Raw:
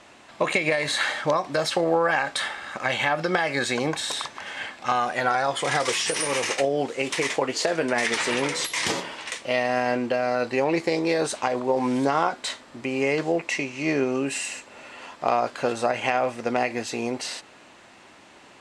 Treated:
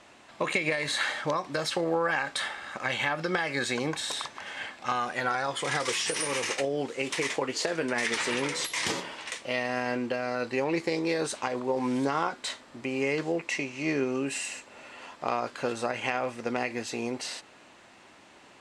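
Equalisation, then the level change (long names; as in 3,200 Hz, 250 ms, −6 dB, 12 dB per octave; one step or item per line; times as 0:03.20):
dynamic equaliser 680 Hz, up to −6 dB, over −36 dBFS, Q 2.7
−4.0 dB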